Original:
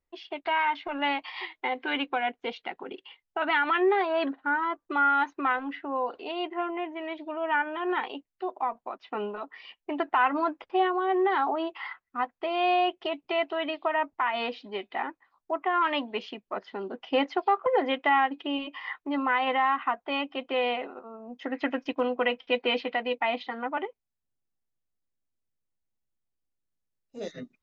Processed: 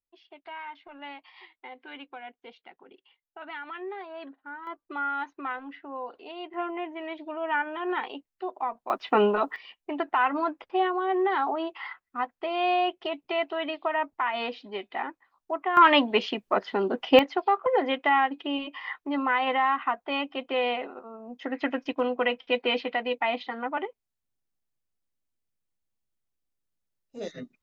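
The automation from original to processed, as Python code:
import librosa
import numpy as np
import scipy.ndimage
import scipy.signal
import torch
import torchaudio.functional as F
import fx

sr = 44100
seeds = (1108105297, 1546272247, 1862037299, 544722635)

y = fx.gain(x, sr, db=fx.steps((0.0, -14.0), (4.67, -7.0), (6.54, -1.0), (8.9, 11.5), (9.56, -0.5), (15.77, 9.0), (17.19, 0.5)))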